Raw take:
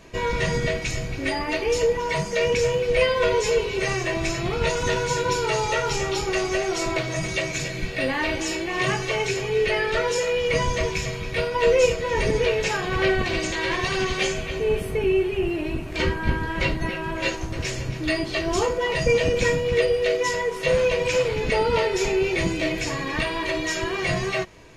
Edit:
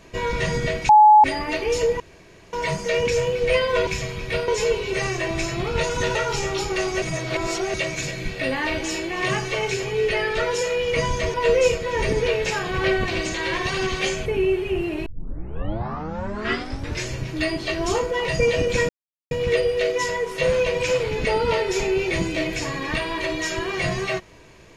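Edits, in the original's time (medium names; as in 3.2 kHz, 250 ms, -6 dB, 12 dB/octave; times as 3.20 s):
0.89–1.24 s: bleep 850 Hz -7.5 dBFS
2.00 s: insert room tone 0.53 s
5.01–5.72 s: delete
6.59–7.31 s: reverse
10.91–11.52 s: move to 3.34 s
14.44–14.93 s: delete
15.73 s: tape start 2.04 s
19.56 s: insert silence 0.42 s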